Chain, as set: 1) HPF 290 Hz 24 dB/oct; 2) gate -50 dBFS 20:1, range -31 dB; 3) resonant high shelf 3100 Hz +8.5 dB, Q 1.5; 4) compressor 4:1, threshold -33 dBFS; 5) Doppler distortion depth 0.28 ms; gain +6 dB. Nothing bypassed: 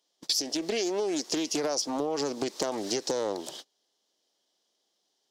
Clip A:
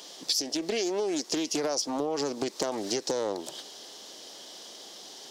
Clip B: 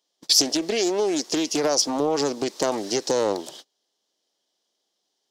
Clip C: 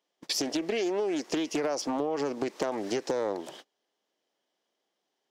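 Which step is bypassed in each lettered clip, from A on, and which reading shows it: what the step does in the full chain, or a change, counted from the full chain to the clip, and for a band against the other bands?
2, momentary loudness spread change +10 LU; 4, mean gain reduction 5.5 dB; 3, 8 kHz band -6.5 dB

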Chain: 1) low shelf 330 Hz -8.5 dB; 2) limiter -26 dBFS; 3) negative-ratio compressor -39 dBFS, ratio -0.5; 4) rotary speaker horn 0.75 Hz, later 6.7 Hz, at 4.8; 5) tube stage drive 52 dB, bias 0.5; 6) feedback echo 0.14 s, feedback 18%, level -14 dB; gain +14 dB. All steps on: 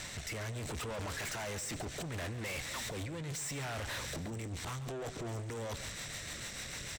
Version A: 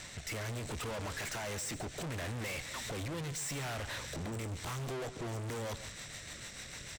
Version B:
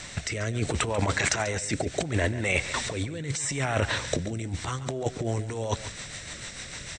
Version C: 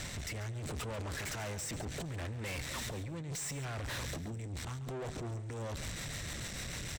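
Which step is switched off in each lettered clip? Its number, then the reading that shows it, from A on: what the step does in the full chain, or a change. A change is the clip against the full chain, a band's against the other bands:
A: 3, momentary loudness spread change +4 LU; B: 5, crest factor change +12.5 dB; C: 1, 125 Hz band +3.5 dB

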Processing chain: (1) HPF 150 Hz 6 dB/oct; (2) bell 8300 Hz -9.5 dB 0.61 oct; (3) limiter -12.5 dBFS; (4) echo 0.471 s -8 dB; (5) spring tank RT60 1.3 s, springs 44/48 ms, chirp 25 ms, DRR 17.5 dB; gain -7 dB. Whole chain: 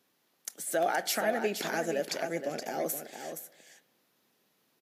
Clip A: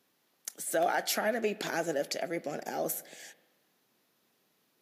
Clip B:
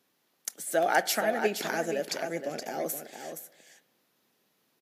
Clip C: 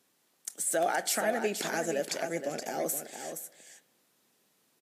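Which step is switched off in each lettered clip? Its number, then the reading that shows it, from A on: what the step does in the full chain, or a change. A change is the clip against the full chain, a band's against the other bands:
4, momentary loudness spread change +1 LU; 3, crest factor change +4.5 dB; 2, 8 kHz band +4.5 dB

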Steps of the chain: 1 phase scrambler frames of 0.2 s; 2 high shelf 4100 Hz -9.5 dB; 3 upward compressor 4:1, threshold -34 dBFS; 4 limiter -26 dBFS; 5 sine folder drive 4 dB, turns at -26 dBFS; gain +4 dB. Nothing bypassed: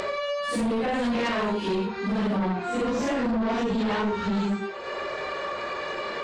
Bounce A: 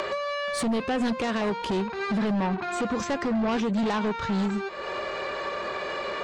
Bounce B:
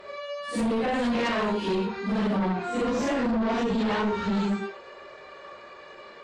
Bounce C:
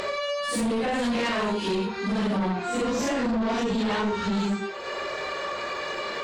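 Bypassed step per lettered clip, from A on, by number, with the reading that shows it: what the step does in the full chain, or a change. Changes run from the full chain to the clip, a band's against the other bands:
1, 8 kHz band +3.5 dB; 3, momentary loudness spread change +13 LU; 2, 8 kHz band +6.5 dB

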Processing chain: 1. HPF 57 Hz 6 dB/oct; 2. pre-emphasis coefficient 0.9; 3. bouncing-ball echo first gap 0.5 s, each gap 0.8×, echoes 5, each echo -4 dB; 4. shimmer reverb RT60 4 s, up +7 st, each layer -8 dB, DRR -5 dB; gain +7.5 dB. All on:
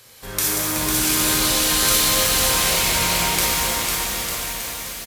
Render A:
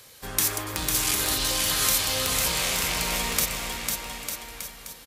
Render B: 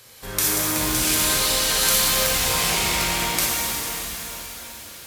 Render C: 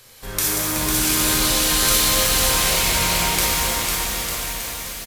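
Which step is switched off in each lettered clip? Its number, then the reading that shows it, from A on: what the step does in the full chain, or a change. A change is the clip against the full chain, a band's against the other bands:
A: 4, 250 Hz band -2.5 dB; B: 3, crest factor change +3.0 dB; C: 1, 125 Hz band +1.5 dB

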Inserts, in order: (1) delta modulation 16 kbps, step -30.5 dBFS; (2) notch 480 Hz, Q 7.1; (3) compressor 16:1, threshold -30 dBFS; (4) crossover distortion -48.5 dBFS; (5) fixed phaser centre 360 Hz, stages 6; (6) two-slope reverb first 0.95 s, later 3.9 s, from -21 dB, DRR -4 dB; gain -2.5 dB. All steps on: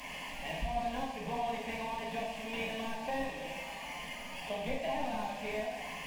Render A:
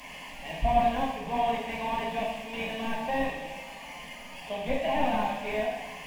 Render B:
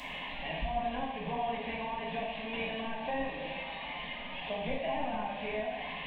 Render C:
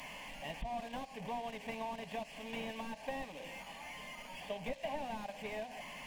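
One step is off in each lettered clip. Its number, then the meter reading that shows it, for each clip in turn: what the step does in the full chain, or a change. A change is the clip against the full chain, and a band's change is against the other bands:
3, mean gain reduction 3.5 dB; 4, distortion -17 dB; 6, loudness change -5.5 LU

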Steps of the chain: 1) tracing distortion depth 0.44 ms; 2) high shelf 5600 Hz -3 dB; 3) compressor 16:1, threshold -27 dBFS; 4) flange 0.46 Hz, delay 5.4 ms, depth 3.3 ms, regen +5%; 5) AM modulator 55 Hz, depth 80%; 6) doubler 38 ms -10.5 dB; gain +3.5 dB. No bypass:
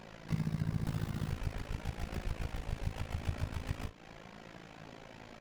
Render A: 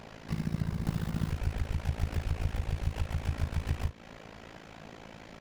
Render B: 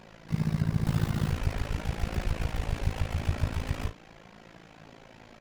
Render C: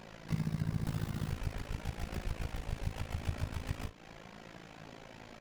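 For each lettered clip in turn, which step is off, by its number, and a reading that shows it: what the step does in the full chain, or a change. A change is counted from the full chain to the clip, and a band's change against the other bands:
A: 4, 125 Hz band +2.0 dB; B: 3, mean gain reduction 5.5 dB; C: 2, 8 kHz band +2.0 dB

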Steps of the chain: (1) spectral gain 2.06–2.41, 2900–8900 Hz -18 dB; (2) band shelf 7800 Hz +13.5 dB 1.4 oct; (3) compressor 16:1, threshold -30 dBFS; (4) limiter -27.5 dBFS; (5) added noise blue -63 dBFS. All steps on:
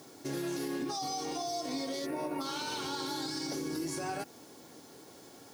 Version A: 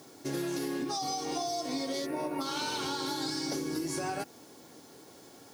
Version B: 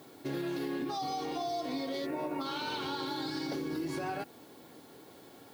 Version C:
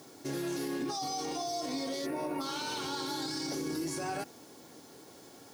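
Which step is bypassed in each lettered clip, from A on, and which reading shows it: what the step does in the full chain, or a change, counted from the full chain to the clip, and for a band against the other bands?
4, mean gain reduction 1.5 dB; 2, 8 kHz band -12.0 dB; 3, mean gain reduction 4.0 dB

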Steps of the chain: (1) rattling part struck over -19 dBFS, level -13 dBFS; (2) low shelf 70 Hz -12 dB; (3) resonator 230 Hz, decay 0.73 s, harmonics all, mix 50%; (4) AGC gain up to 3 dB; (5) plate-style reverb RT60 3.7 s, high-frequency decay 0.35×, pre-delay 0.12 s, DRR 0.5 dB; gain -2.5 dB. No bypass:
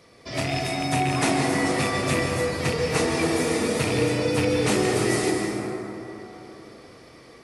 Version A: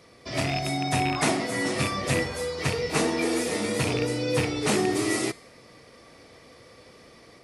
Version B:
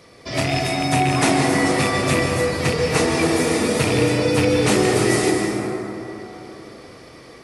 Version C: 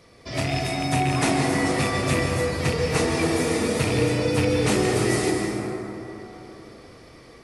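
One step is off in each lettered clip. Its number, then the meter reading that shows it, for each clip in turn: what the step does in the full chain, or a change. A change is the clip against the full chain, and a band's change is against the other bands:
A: 5, momentary loudness spread change -9 LU; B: 3, loudness change +5.0 LU; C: 2, 125 Hz band +3.0 dB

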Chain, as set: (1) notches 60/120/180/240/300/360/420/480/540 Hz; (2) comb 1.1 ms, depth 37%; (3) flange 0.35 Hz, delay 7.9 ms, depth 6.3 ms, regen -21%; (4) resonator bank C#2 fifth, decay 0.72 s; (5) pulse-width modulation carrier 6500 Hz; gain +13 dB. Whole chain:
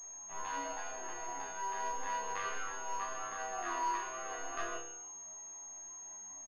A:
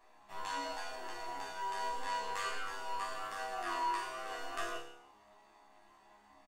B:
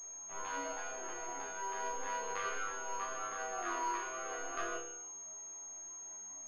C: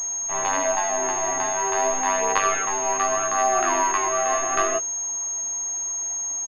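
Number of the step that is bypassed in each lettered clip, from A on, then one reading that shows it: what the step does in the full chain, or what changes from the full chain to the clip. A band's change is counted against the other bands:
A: 5, 4 kHz band +6.0 dB; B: 2, 1 kHz band -3.0 dB; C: 4, 500 Hz band +6.0 dB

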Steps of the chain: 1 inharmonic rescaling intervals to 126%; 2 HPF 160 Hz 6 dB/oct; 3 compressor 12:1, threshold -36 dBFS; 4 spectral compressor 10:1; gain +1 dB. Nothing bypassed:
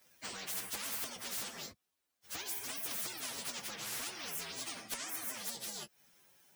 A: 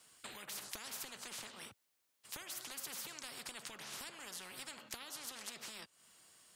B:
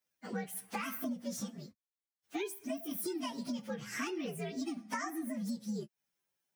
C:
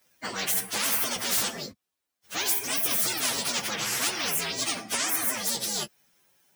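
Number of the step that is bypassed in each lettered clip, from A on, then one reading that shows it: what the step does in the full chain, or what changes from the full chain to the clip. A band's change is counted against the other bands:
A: 1, 125 Hz band -1.5 dB; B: 4, 4 kHz band -14.5 dB; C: 3, mean gain reduction 9.0 dB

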